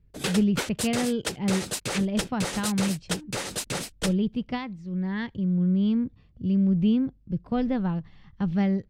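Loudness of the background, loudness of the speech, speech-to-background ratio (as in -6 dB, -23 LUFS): -31.5 LUFS, -27.5 LUFS, 4.0 dB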